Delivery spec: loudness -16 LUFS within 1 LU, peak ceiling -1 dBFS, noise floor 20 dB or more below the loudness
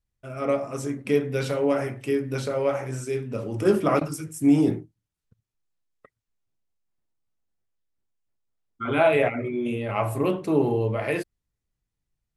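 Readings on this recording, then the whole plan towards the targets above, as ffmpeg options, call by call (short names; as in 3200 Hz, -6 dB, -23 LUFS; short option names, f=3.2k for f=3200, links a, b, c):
loudness -25.0 LUFS; peak -8.0 dBFS; loudness target -16.0 LUFS
-> -af "volume=9dB,alimiter=limit=-1dB:level=0:latency=1"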